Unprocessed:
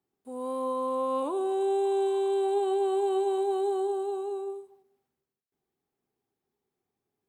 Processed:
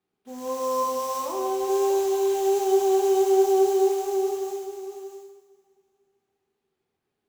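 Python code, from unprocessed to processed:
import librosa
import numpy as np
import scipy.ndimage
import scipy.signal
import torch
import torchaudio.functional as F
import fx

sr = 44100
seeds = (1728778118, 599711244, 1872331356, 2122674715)

y = fx.highpass(x, sr, hz=520.0, slope=12, at=(0.82, 1.68), fade=0.02)
y = fx.sample_hold(y, sr, seeds[0], rate_hz=6900.0, jitter_pct=20)
y = y + 10.0 ** (-8.5 / 20.0) * np.pad(y, (int(642 * sr / 1000.0), 0))[:len(y)]
y = fx.rev_double_slope(y, sr, seeds[1], early_s=0.87, late_s=2.8, knee_db=-18, drr_db=-0.5)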